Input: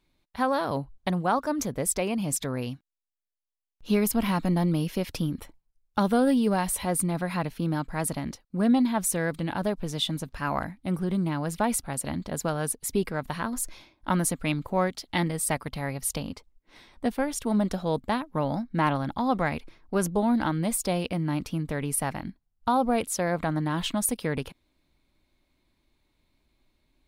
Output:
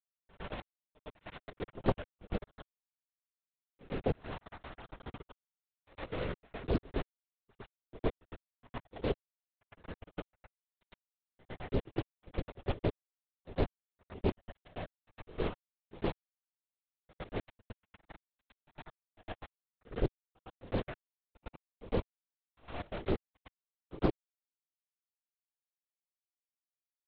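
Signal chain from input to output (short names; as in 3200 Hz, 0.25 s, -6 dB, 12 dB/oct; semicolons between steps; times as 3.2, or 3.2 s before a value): differentiator; notches 50/100/150 Hz; level quantiser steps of 11 dB; careless resampling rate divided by 4×, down none, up hold; ladder low-pass 580 Hz, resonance 25%; vibrato 2.3 Hz 5 cents; bit-crush 9-bit; LPC vocoder at 8 kHz whisper; pre-echo 0.109 s -19 dB; Doppler distortion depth 0.49 ms; gain +17 dB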